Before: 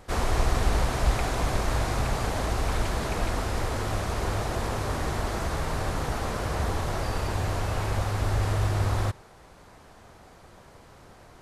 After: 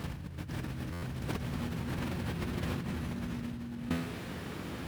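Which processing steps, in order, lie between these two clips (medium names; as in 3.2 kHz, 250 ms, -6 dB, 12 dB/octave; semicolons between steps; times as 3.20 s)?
tone controls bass +10 dB, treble -1 dB; speed mistake 33 rpm record played at 78 rpm; high-pass 60 Hz 24 dB/octave; feedback comb 84 Hz, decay 0.73 s, harmonics all, mix 60%; compressor with a negative ratio -37 dBFS, ratio -1; buffer glitch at 0.92 s, samples 512, times 8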